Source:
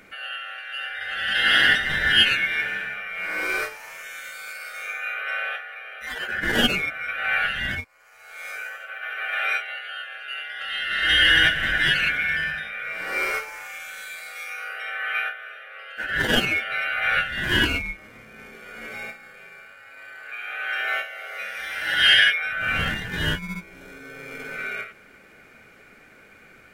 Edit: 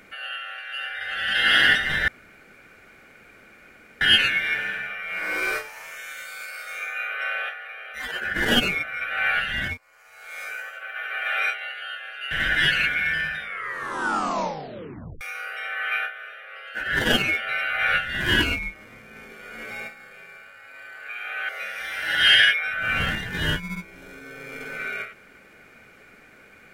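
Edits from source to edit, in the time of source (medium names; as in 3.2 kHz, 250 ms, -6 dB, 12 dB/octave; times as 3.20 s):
2.08 s: insert room tone 1.93 s
10.38–11.54 s: delete
12.63 s: tape stop 1.81 s
20.72–21.28 s: delete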